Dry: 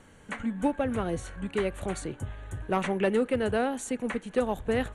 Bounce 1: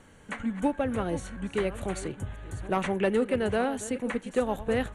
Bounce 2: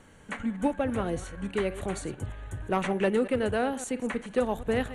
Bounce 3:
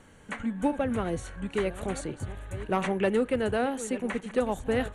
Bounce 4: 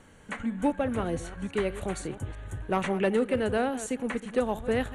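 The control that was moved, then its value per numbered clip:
reverse delay, time: 0.456, 0.113, 0.701, 0.168 s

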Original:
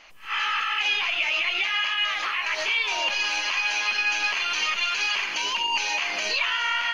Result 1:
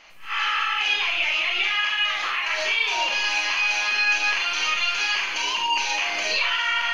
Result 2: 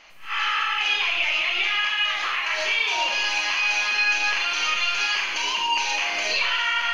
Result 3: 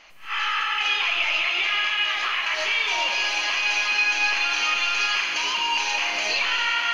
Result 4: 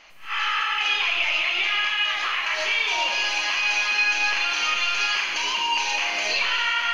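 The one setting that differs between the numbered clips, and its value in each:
Schroeder reverb, RT60: 0.3, 0.74, 4.3, 1.8 s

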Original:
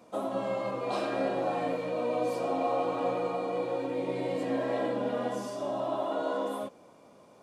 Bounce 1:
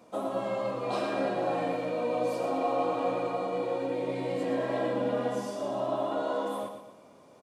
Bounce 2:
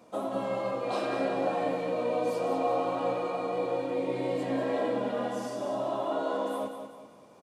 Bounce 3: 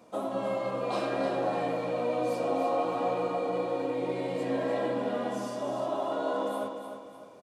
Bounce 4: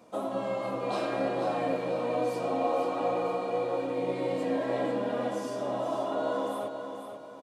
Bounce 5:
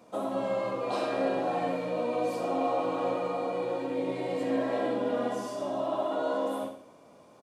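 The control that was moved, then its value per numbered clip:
feedback echo, time: 118, 194, 302, 486, 67 ms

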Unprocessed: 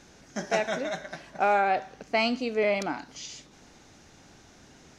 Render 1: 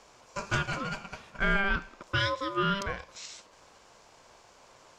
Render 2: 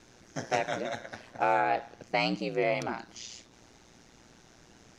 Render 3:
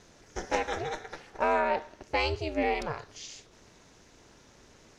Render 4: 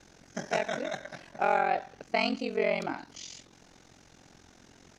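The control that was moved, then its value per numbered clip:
ring modulator, frequency: 790, 59, 160, 22 Hz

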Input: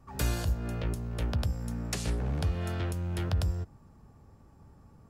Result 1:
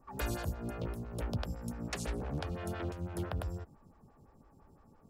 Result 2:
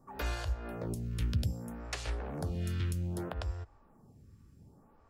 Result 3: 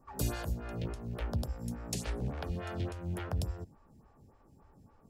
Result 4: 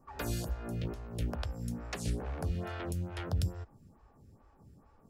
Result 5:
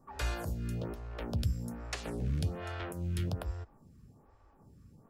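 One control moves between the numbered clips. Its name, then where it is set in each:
photocell phaser, rate: 5.9, 0.63, 3.5, 2.3, 1.2 Hz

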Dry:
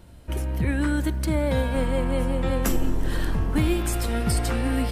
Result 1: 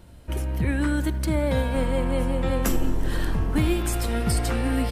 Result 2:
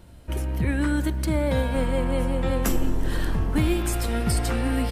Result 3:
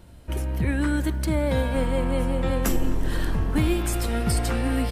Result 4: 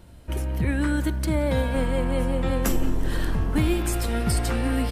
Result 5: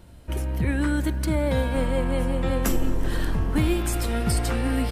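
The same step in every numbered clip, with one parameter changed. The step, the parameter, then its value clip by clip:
speakerphone echo, time: 80, 120, 260, 180, 390 ms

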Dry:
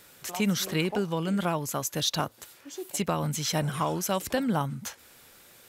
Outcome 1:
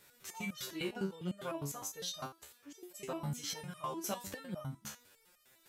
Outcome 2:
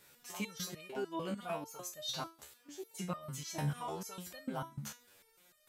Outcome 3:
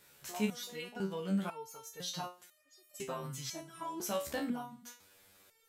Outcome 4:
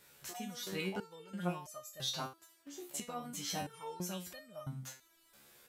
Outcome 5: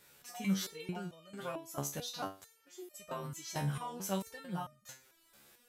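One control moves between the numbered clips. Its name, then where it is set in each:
stepped resonator, rate: 9.9, 6.7, 2, 3, 4.5 Hz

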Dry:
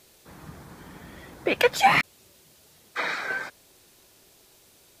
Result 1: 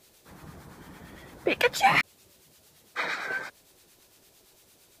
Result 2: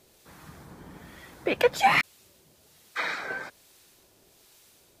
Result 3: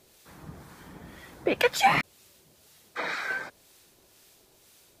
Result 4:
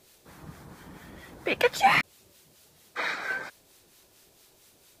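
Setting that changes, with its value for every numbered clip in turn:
harmonic tremolo, rate: 8.8, 1.2, 2, 4.4 Hz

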